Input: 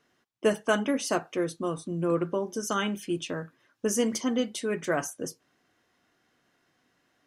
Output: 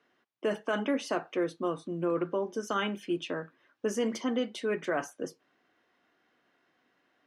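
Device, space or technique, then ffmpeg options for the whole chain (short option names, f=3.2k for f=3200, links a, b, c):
DJ mixer with the lows and highs turned down: -filter_complex "[0:a]acrossover=split=210 4100:gain=0.251 1 0.178[a][b][c];[a][b][c]amix=inputs=3:normalize=0,alimiter=limit=-20.5dB:level=0:latency=1:release=27"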